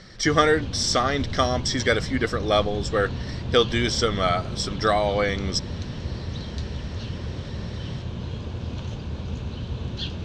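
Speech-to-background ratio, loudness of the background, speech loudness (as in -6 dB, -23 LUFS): 9.0 dB, -32.5 LUFS, -23.5 LUFS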